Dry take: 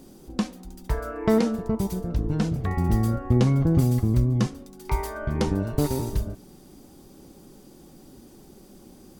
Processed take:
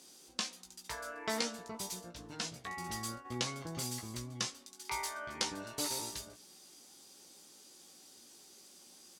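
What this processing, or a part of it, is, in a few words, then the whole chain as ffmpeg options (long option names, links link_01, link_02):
piezo pickup straight into a mixer: -filter_complex "[0:a]asplit=3[link_01][link_02][link_03];[link_01]afade=type=out:start_time=2.09:duration=0.02[link_04];[link_02]agate=range=-33dB:threshold=-24dB:ratio=3:detection=peak,afade=type=in:start_time=2.09:duration=0.02,afade=type=out:start_time=3.24:duration=0.02[link_05];[link_03]afade=type=in:start_time=3.24:duration=0.02[link_06];[link_04][link_05][link_06]amix=inputs=3:normalize=0,lowpass=6300,aderivative,asplit=2[link_07][link_08];[link_08]adelay=17,volume=-5.5dB[link_09];[link_07][link_09]amix=inputs=2:normalize=0,volume=7.5dB"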